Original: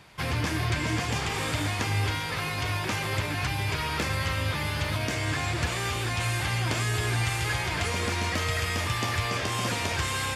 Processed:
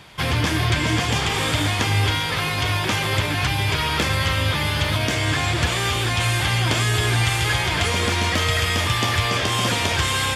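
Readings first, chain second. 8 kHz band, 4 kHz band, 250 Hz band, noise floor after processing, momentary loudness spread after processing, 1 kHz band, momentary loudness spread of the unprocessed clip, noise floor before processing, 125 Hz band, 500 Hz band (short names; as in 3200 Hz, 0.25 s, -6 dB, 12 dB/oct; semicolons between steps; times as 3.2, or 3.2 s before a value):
+7.0 dB, +10.0 dB, +7.0 dB, -24 dBFS, 2 LU, +7.0 dB, 2 LU, -31 dBFS, +7.0 dB, +7.0 dB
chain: bell 3300 Hz +6.5 dB 0.24 oct; gain +7 dB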